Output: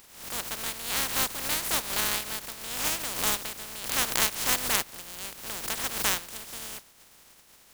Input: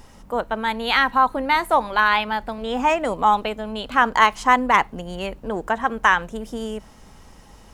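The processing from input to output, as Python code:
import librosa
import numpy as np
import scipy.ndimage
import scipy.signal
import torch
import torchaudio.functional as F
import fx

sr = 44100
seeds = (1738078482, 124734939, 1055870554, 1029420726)

y = fx.spec_flatten(x, sr, power=0.14)
y = fx.pre_swell(y, sr, db_per_s=83.0)
y = y * librosa.db_to_amplitude(-10.0)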